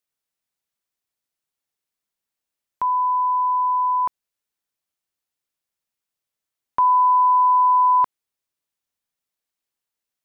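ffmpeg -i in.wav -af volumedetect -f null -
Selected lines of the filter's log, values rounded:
mean_volume: -23.1 dB
max_volume: -12.3 dB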